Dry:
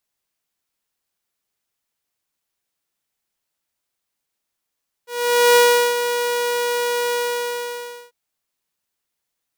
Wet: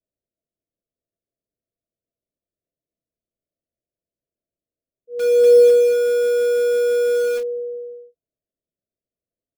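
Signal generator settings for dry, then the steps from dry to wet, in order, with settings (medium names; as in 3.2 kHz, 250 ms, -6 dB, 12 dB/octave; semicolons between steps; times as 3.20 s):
ADSR saw 482 Hz, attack 486 ms, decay 388 ms, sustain -9.5 dB, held 2.07 s, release 974 ms -7 dBFS
Chebyshev low-pass 690 Hz, order 10; in parallel at -8.5 dB: bit crusher 4-bit; on the sum: doubling 31 ms -9 dB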